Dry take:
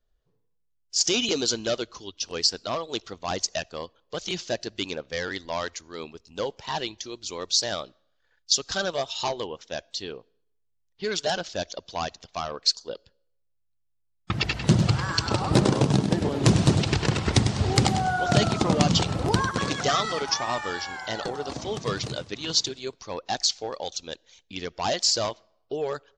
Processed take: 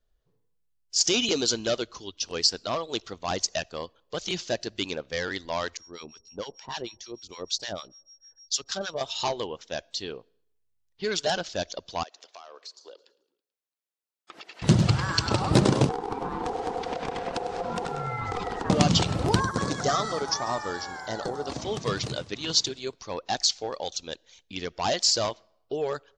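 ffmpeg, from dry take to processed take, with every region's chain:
-filter_complex "[0:a]asettb=1/sr,asplit=3[s0][s1][s2];[s0]atrim=end=5.774[s3];[s1]atrim=start=5.77:end=9.01,asetpts=PTS-STARTPTS,afade=t=in:d=0.004:c=qsin,afade=t=out:st=3.236:d=0.004:c=qsin,aeval=exprs='val(0)+0.00447*sin(2*PI*5600*n/s)':c=same,acrossover=split=1000[s4][s5];[s4]aeval=exprs='val(0)*(1-1/2+1/2*cos(2*PI*6.6*n/s))':c=same[s6];[s5]aeval=exprs='val(0)*(1-1/2-1/2*cos(2*PI*6.6*n/s))':c=same[s7];[s6][s7]amix=inputs=2:normalize=0[s8];[s2]atrim=start=9.006[s9];[s3][s8]acrossfade=d=0.004:c1=hsin:c2=qsin[s10];[s10][s9]acrossfade=d=0.004:c1=qsin:c2=hsin,asettb=1/sr,asplit=3[s11][s12][s13];[s11]atrim=end=12.034[s14];[s12]atrim=start=12.03:end=14.62,asetpts=PTS-STARTPTS,afade=t=in:d=0.004:c=qsin,afade=t=out:st=2.586:d=0.004:c=qsin,highpass=f=360:w=0.5412,highpass=f=360:w=1.3066,acompressor=threshold=0.00708:ratio=5:attack=3.2:release=140:knee=1:detection=peak,asplit=5[s15][s16][s17][s18][s19];[s16]adelay=109,afreqshift=-33,volume=0.0841[s20];[s17]adelay=218,afreqshift=-66,volume=0.0479[s21];[s18]adelay=327,afreqshift=-99,volume=0.0272[s22];[s19]adelay=436,afreqshift=-132,volume=0.0157[s23];[s15][s20][s21][s22][s23]amix=inputs=5:normalize=0,atrim=end_sample=114219[s24];[s13]atrim=start=14.616[s25];[s14][s24]acrossfade=d=0.004:c1=hsin:c2=qsin[s26];[s26][s25]acrossfade=d=0.004:c1=qsin:c2=hsin,asettb=1/sr,asplit=3[s27][s28][s29];[s27]atrim=end=15.894[s30];[s28]atrim=start=15.89:end=18.7,asetpts=PTS-STARTPTS,afade=t=in:d=0.004:c=qsin,afade=t=out:st=2.806:d=0.004:c=qsin,highshelf=f=3100:g=-11,acompressor=threshold=0.0631:ratio=6:attack=3.2:release=140:knee=1:detection=peak,aeval=exprs='val(0)*sin(2*PI*610*n/s)':c=same[s31];[s29]atrim=start=18.696[s32];[s30][s31]acrossfade=d=0.004:c1=hsin:c2=qsin[s33];[s33][s32]acrossfade=d=0.004:c1=qsin:c2=hsin,asettb=1/sr,asplit=3[s34][s35][s36];[s34]atrim=end=19.404[s37];[s35]atrim=start=19.4:end=21.47,asetpts=PTS-STARTPTS,afade=t=in:d=0.004:c=qsin,afade=t=out:st=2.066:d=0.004:c=qsin,equalizer=f=2700:w=1.6:g=-12.5,aecho=1:1:142|284|426|568|710:0.112|0.0651|0.0377|0.0219|0.0127,atrim=end_sample=91287[s38];[s36]atrim=start=21.466[s39];[s37][s38]acrossfade=d=0.004:c1=hsin:c2=qsin[s40];[s40][s39]acrossfade=d=0.004:c1=qsin:c2=hsin"

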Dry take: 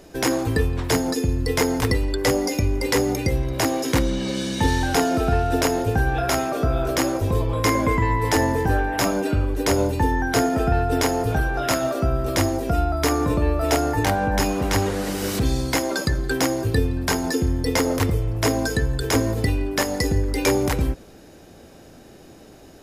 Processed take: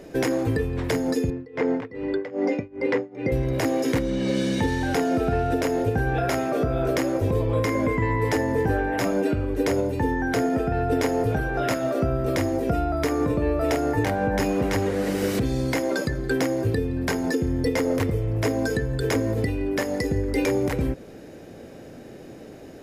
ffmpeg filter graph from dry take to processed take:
-filter_complex "[0:a]asettb=1/sr,asplit=3[s0][s1][s2];[s0]atrim=end=1.304[s3];[s1]atrim=start=1.3:end=3.32,asetpts=PTS-STARTPTS,afade=t=in:d=0.004:c=qsin,afade=t=out:st=2.016:d=0.004:c=qsin,highpass=170,lowpass=2400,tremolo=f=2.5:d=0.95[s4];[s2]atrim=start=3.316[s5];[s3][s4]acrossfade=d=0.004:c1=hsin:c2=qsin[s6];[s6][s5]acrossfade=d=0.004:c1=qsin:c2=hsin,equalizer=f=125:t=o:w=1:g=7,equalizer=f=250:t=o:w=1:g=6,equalizer=f=500:t=o:w=1:g=9,equalizer=f=2000:t=o:w=1:g=7,alimiter=limit=0.335:level=0:latency=1:release=445,volume=0.631"

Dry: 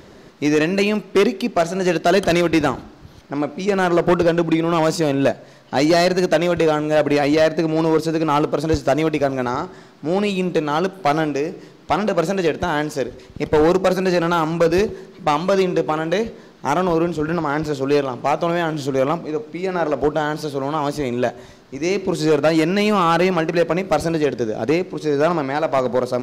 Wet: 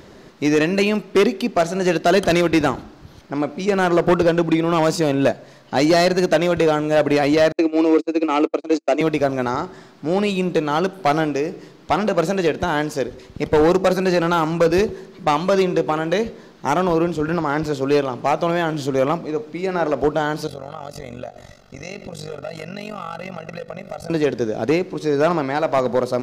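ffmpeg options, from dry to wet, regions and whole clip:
-filter_complex "[0:a]asettb=1/sr,asplit=3[s0][s1][s2];[s0]atrim=end=7.524[s3];[s1]atrim=start=7.52:end=9.01,asetpts=PTS-STARTPTS,afade=t=in:d=0.004:c=qsin,afade=t=out:st=1.486:d=0.004:c=qsin,agate=range=0.00631:threshold=0.1:ratio=16:release=100:detection=peak,highpass=f=290:w=0.5412,highpass=f=290:w=1.3066,equalizer=f=320:t=q:w=4:g=6,equalizer=f=950:t=q:w=4:g=-6,equalizer=f=1600:t=q:w=4:g=-7,equalizer=f=2400:t=q:w=4:g=7,equalizer=f=3400:t=q:w=4:g=-4,equalizer=f=5400:t=q:w=4:g=-4,lowpass=f=7800:w=0.5412,lowpass=f=7800:w=1.3066[s4];[s2]atrim=start=9.006[s5];[s3][s4]acrossfade=d=0.004:c1=hsin:c2=qsin[s6];[s6][s5]acrossfade=d=0.004:c1=qsin:c2=hsin,asettb=1/sr,asplit=3[s7][s8][s9];[s7]atrim=end=20.474[s10];[s8]atrim=start=20.47:end=24.1,asetpts=PTS-STARTPTS,afade=t=in:d=0.004:c=qsin,afade=t=out:st=3.626:d=0.004:c=qsin,aecho=1:1:1.5:0.91,atrim=end_sample=160083,acompressor=threshold=0.0447:ratio=4:attack=3.2:release=140:knee=1:detection=peak,tremolo=f=47:d=0.857[s11];[s9]atrim=start=24.096[s12];[s10][s11]acrossfade=d=0.004:c1=hsin:c2=qsin[s13];[s13][s12]acrossfade=d=0.004:c1=qsin:c2=hsin"

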